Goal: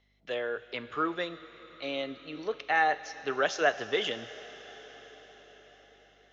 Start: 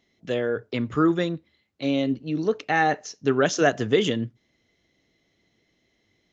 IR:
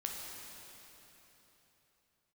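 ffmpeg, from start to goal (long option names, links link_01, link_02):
-filter_complex "[0:a]aeval=exprs='val(0)+0.00355*(sin(2*PI*50*n/s)+sin(2*PI*2*50*n/s)/2+sin(2*PI*3*50*n/s)/3+sin(2*PI*4*50*n/s)/4+sin(2*PI*5*50*n/s)/5)':channel_layout=same,acrossover=split=480 5100:gain=0.112 1 0.0708[link_01][link_02][link_03];[link_01][link_02][link_03]amix=inputs=3:normalize=0,asplit=2[link_04][link_05];[1:a]atrim=start_sample=2205,asetrate=22050,aresample=44100,highshelf=frequency=2500:gain=10.5[link_06];[link_05][link_06]afir=irnorm=-1:irlink=0,volume=-19.5dB[link_07];[link_04][link_07]amix=inputs=2:normalize=0,volume=-4dB"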